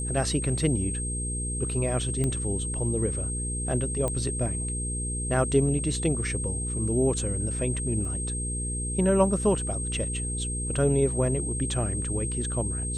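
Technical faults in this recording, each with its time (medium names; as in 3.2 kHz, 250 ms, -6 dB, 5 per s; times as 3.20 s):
hum 60 Hz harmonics 8 -32 dBFS
whine 8.4 kHz -32 dBFS
2.24 s: pop -16 dBFS
4.08 s: pop -16 dBFS
8.05 s: dropout 2.2 ms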